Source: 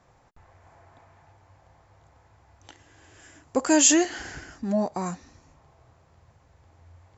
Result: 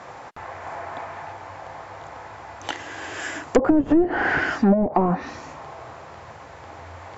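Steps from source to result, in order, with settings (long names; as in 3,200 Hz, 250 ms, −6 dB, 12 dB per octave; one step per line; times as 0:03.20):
mid-hump overdrive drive 32 dB, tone 2,000 Hz, clips at −3.5 dBFS
treble cut that deepens with the level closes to 320 Hz, closed at −10 dBFS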